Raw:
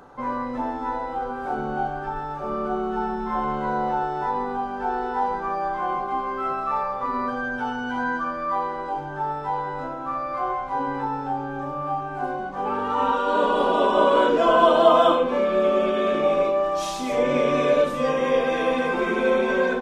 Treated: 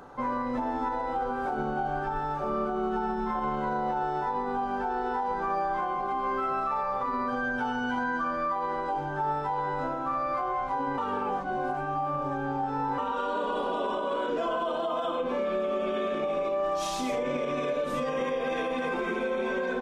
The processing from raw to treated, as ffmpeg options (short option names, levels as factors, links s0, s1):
-filter_complex "[0:a]asplit=3[s0][s1][s2];[s0]atrim=end=10.982[s3];[s1]atrim=start=10.978:end=12.982,asetpts=PTS-STARTPTS,areverse[s4];[s2]atrim=start=12.978[s5];[s3][s4]acrossfade=d=0.004:c1=hsin:c2=hsin[s6];[s6][s5]acrossfade=d=0.004:c1=hsin:c2=hsin,acompressor=threshold=0.0794:ratio=6,alimiter=limit=0.0841:level=0:latency=1:release=71"